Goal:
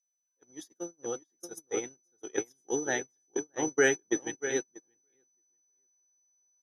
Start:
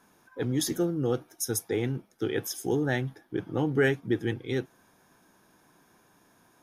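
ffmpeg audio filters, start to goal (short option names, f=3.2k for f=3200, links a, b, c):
-filter_complex "[0:a]asplit=2[a][b];[b]adelay=632,lowpass=f=2.6k:p=1,volume=-4.5dB,asplit=2[c][d];[d]adelay=632,lowpass=f=2.6k:p=1,volume=0.15,asplit=2[e][f];[f]adelay=632,lowpass=f=2.6k:p=1,volume=0.15[g];[c][e][g]amix=inputs=3:normalize=0[h];[a][h]amix=inputs=2:normalize=0,aeval=exprs='val(0)+0.0224*sin(2*PI*6000*n/s)':c=same,agate=range=-39dB:threshold=-24dB:ratio=16:detection=peak,lowpass=11k,dynaudnorm=f=620:g=5:m=12.5dB,highpass=340,volume=-8.5dB"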